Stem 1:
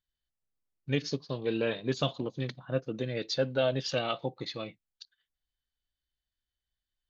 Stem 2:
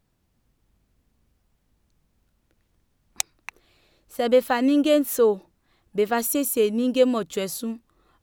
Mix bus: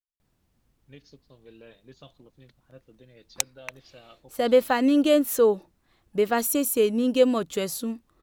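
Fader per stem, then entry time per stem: −19.5, −0.5 decibels; 0.00, 0.20 seconds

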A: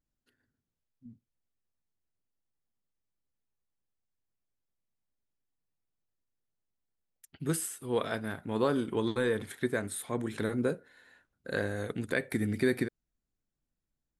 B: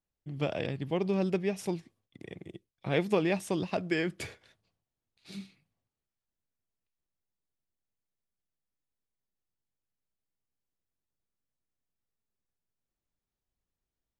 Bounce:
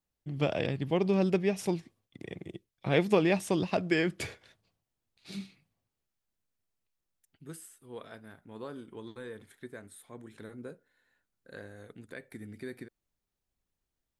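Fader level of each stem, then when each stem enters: −14.0, +2.5 decibels; 0.00, 0.00 seconds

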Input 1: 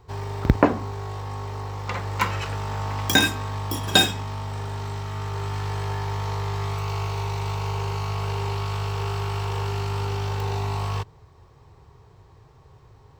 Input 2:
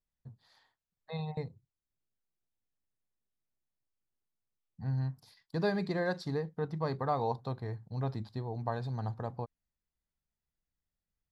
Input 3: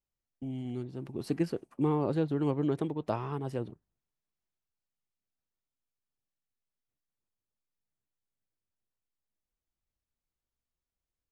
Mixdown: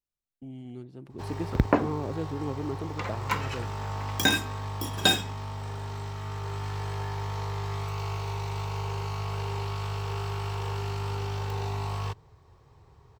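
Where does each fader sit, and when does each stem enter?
−5.0 dB, muted, −4.5 dB; 1.10 s, muted, 0.00 s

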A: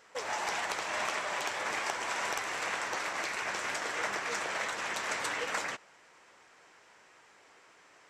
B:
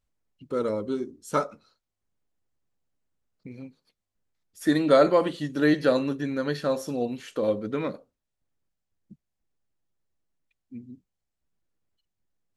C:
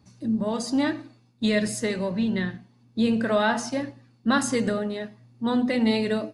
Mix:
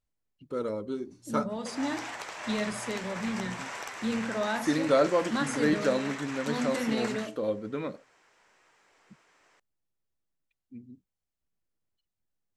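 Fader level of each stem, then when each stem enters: −5.0, −5.0, −8.5 decibels; 1.50, 0.00, 1.05 seconds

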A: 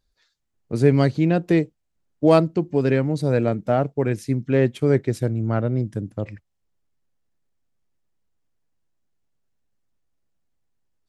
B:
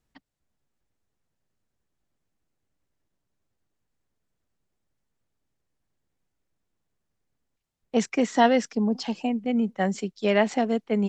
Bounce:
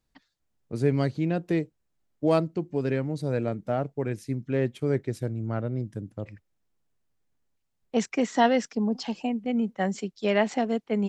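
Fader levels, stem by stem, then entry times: −7.5, −2.0 decibels; 0.00, 0.00 seconds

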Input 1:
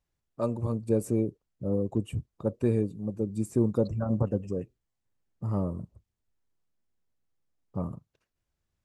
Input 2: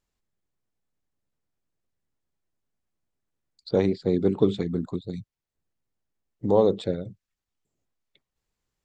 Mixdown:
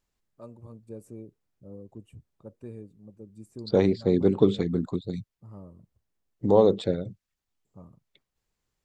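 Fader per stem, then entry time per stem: −16.0, +1.0 decibels; 0.00, 0.00 seconds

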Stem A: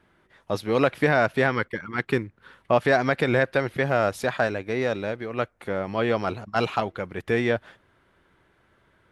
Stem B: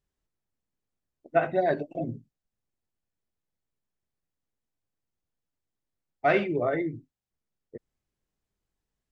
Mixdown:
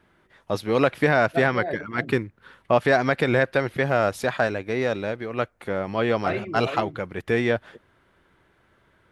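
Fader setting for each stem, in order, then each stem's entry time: +1.0, −5.5 decibels; 0.00, 0.00 seconds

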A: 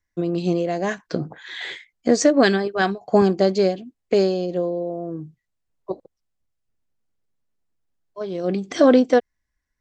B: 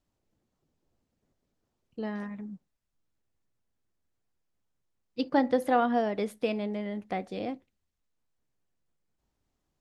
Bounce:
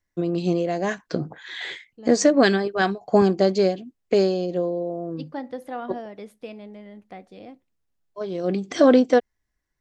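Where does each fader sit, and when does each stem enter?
−1.0, −8.0 decibels; 0.00, 0.00 seconds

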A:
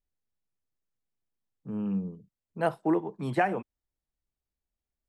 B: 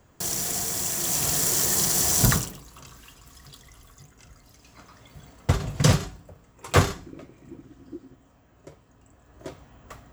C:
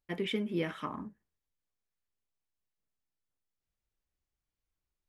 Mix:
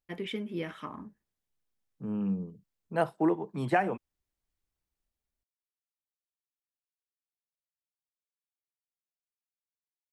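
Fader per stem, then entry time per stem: −0.5 dB, muted, −2.5 dB; 0.35 s, muted, 0.00 s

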